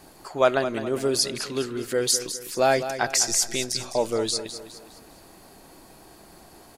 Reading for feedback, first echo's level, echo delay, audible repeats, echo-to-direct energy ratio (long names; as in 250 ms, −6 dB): 42%, −11.0 dB, 206 ms, 4, −10.0 dB